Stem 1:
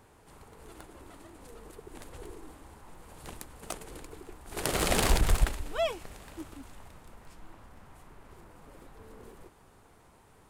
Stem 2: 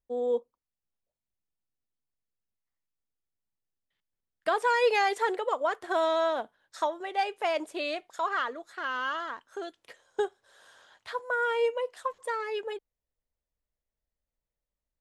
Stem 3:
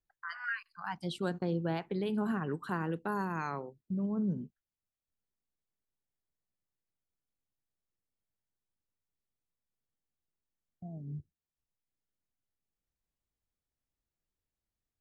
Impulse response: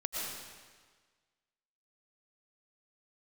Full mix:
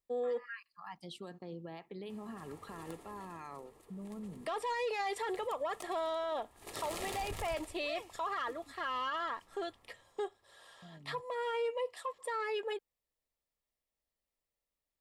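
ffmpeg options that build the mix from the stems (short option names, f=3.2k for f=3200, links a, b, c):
-filter_complex "[0:a]equalizer=f=99:t=o:w=0.34:g=10,adelay=2100,volume=-1.5dB,afade=t=out:st=2.97:d=0.59:silence=0.354813,afade=t=out:st=9.73:d=0.66:silence=0.237137[a];[1:a]bandreject=f=6.4k:w=5.9,volume=0.5dB[b];[2:a]alimiter=level_in=4.5dB:limit=-24dB:level=0:latency=1:release=93,volume=-4.5dB,volume=-5dB[c];[b][c]amix=inputs=2:normalize=0,asoftclip=type=tanh:threshold=-19.5dB,alimiter=level_in=1dB:limit=-24dB:level=0:latency=1:release=184,volume=-1dB,volume=0dB[d];[a][d]amix=inputs=2:normalize=0,asuperstop=centerf=1500:order=12:qfactor=7.2,lowshelf=f=190:g=-11,alimiter=level_in=5dB:limit=-24dB:level=0:latency=1:release=14,volume=-5dB"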